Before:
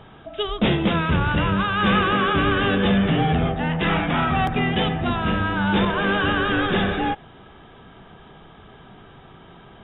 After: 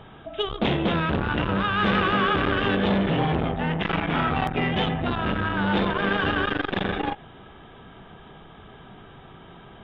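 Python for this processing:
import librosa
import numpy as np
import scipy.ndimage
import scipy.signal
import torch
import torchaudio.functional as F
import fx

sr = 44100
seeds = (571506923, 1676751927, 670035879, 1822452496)

y = fx.transformer_sat(x, sr, knee_hz=520.0)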